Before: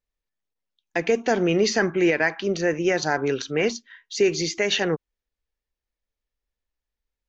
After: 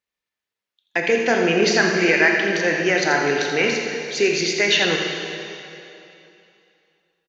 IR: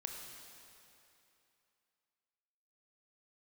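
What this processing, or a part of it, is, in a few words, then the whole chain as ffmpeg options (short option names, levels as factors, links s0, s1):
PA in a hall: -filter_complex "[0:a]highpass=120,equalizer=f=2300:t=o:w=2.4:g=7.5,aecho=1:1:82:0.316[s0];[1:a]atrim=start_sample=2205[s1];[s0][s1]afir=irnorm=-1:irlink=0,volume=1.33"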